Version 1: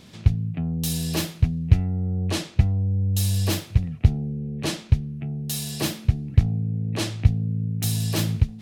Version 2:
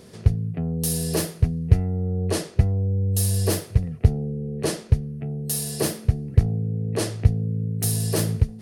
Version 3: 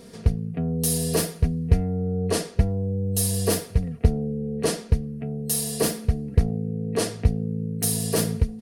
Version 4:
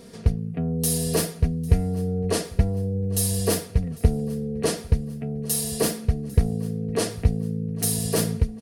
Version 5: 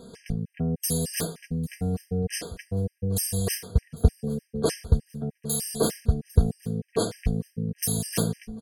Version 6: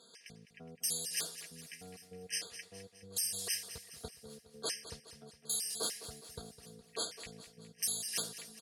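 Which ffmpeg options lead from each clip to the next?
-af "superequalizer=7b=3.16:8b=1.58:12b=0.562:13b=0.501:16b=2.24"
-af "aecho=1:1:4.3:0.59"
-af "aecho=1:1:799|1598|2397:0.075|0.0382|0.0195"
-af "afftfilt=real='re*gt(sin(2*PI*3.3*pts/sr)*(1-2*mod(floor(b*sr/1024/1600),2)),0)':imag='im*gt(sin(2*PI*3.3*pts/sr)*(1-2*mod(floor(b*sr/1024/1600),2)),0)':win_size=1024:overlap=0.75"
-af "bandpass=f=4.7k:t=q:w=0.62:csg=0,aecho=1:1:207|414|621|828|1035:0.224|0.119|0.0629|0.0333|0.0177,volume=-2.5dB"

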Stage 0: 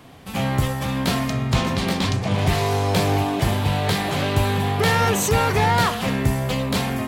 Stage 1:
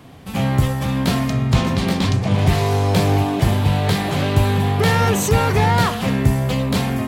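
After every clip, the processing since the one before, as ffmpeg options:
-af "equalizer=f=110:w=0.32:g=5"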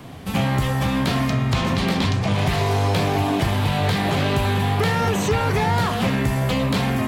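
-filter_complex "[0:a]flanger=delay=5:depth=6.5:regen=-70:speed=1.6:shape=sinusoidal,asplit=2[a][b];[b]alimiter=limit=-18.5dB:level=0:latency=1,volume=-1dB[c];[a][c]amix=inputs=2:normalize=0,acrossover=split=750|4700[d][e][f];[d]acompressor=threshold=-22dB:ratio=4[g];[e]acompressor=threshold=-27dB:ratio=4[h];[f]acompressor=threshold=-43dB:ratio=4[i];[g][h][i]amix=inputs=3:normalize=0,volume=3dB"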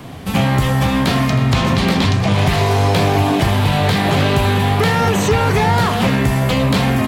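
-af "aecho=1:1:317:0.168,volume=5.5dB"

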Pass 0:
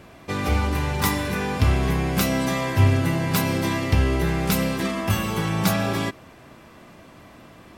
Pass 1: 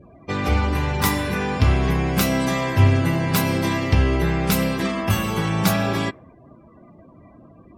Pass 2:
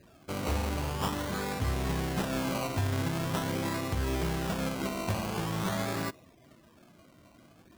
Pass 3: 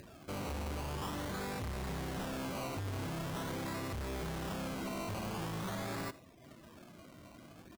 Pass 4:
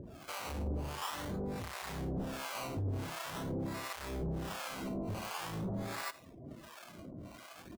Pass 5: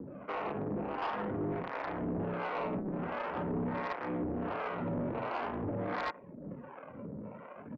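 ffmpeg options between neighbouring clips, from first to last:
-af "afftdn=nr=32:nf=-43,volume=2dB"
-af "acrusher=samples=20:mix=1:aa=0.000001:lfo=1:lforange=12:lforate=0.45,lowshelf=f=350:g=-3,alimiter=limit=-12.5dB:level=0:latency=1:release=132,volume=-8.5dB"
-af "acompressor=mode=upward:threshold=-46dB:ratio=2.5,asoftclip=type=hard:threshold=-36dB,aecho=1:1:81:0.1,volume=-1.5dB"
-filter_complex "[0:a]alimiter=level_in=17.5dB:limit=-24dB:level=0:latency=1:release=227,volume=-17.5dB,acrossover=split=650[a][b];[a]aeval=exprs='val(0)*(1-1/2+1/2*cos(2*PI*1.4*n/s))':c=same[c];[b]aeval=exprs='val(0)*(1-1/2-1/2*cos(2*PI*1.4*n/s))':c=same[d];[c][d]amix=inputs=2:normalize=0,volume=9.5dB"
-af "adynamicsmooth=sensitivity=7:basefreq=810,highpass=f=260:t=q:w=0.5412,highpass=f=260:t=q:w=1.307,lowpass=f=2.7k:t=q:w=0.5176,lowpass=f=2.7k:t=q:w=0.7071,lowpass=f=2.7k:t=q:w=1.932,afreqshift=-89,aeval=exprs='0.0335*sin(PI/2*2*val(0)/0.0335)':c=same"

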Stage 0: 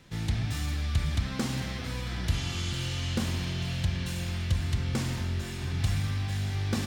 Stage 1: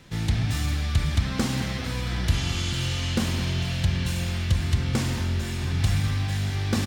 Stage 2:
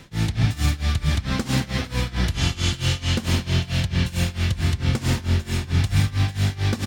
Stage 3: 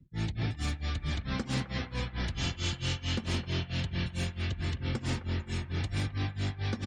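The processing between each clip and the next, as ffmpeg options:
-filter_complex "[0:a]asplit=2[a][b];[b]adelay=209.9,volume=-13dB,highshelf=f=4k:g=-4.72[c];[a][c]amix=inputs=2:normalize=0,volume=5dB"
-af "tremolo=f=4.5:d=0.9,volume=7.5dB"
-filter_complex "[0:a]afftdn=nr=34:nf=-38,acrossover=split=210|470|2700[a][b][c][d];[a]asoftclip=type=hard:threshold=-22dB[e];[c]aecho=1:1:261|522|783|1044|1305:0.355|0.145|0.0596|0.0245|0.01[f];[e][b][f][d]amix=inputs=4:normalize=0,volume=-8.5dB"

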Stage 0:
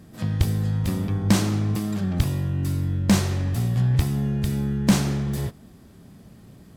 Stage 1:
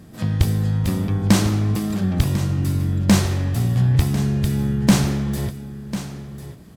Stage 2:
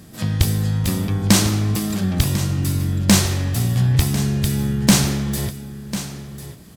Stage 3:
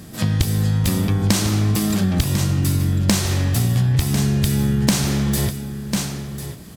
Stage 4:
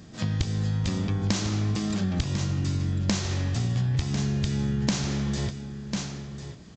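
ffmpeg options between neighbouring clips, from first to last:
-af "aecho=1:1:1047:0.237,volume=3.5dB"
-af "highshelf=f=2.5k:g=9"
-af "acompressor=threshold=-19dB:ratio=6,volume=4.5dB"
-af "aresample=16000,aresample=44100,volume=-8dB"

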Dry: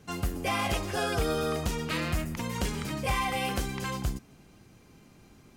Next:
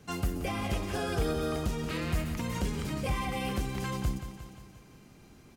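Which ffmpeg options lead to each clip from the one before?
-filter_complex "[0:a]aecho=1:1:177|354|531|708|885|1062:0.266|0.146|0.0805|0.0443|0.0243|0.0134,acrossover=split=460[a][b];[b]alimiter=level_in=3.5dB:limit=-24dB:level=0:latency=1:release=443,volume=-3.5dB[c];[a][c]amix=inputs=2:normalize=0"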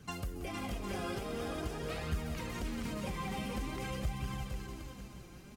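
-filter_complex "[0:a]acompressor=threshold=-37dB:ratio=4,asplit=2[a][b];[b]aecho=0:1:460|759|953.4|1080|1162:0.631|0.398|0.251|0.158|0.1[c];[a][c]amix=inputs=2:normalize=0,flanger=delay=0.6:depth=5.2:regen=39:speed=0.47:shape=triangular,volume=3dB"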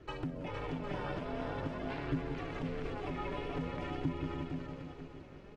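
-af "lowpass=2.7k,aeval=exprs='val(0)*sin(2*PI*210*n/s)':c=same,volume=3dB"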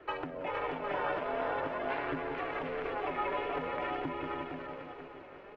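-filter_complex "[0:a]acrossover=split=410 2900:gain=0.1 1 0.0794[a][b][c];[a][b][c]amix=inputs=3:normalize=0,volume=9dB"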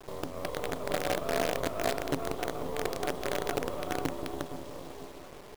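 -filter_complex "[0:a]afftfilt=real='re*(1-between(b*sr/4096,760,3100))':imag='im*(1-between(b*sr/4096,760,3100))':win_size=4096:overlap=0.75,asplit=2[a][b];[b]adelay=360,highpass=300,lowpass=3.4k,asoftclip=type=hard:threshold=-33dB,volume=-8dB[c];[a][c]amix=inputs=2:normalize=0,acrusher=bits=6:dc=4:mix=0:aa=0.000001,volume=6dB"

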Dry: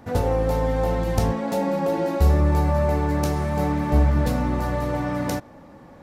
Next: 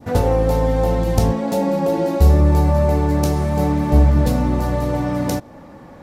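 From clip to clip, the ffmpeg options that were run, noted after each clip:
-af "adynamicequalizer=threshold=0.00891:dfrequency=1600:dqfactor=0.78:tfrequency=1600:tqfactor=0.78:attack=5:release=100:ratio=0.375:range=3:mode=cutabove:tftype=bell,volume=5.5dB"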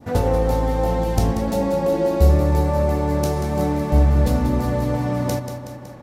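-af "aecho=1:1:186|372|558|744|930|1116|1302:0.355|0.209|0.124|0.0729|0.043|0.0254|0.015,volume=-2.5dB"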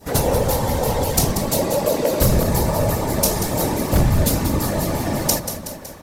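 -af "afftfilt=real='hypot(re,im)*cos(2*PI*random(0))':imag='hypot(re,im)*sin(2*PI*random(1))':win_size=512:overlap=0.75,aeval=exprs='0.2*(abs(mod(val(0)/0.2+3,4)-2)-1)':c=same,crystalizer=i=5.5:c=0,volume=5dB"

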